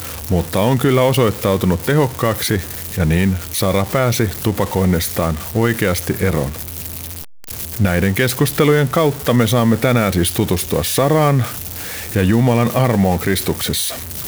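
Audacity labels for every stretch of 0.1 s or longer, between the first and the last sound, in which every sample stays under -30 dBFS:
7.240000	7.440000	silence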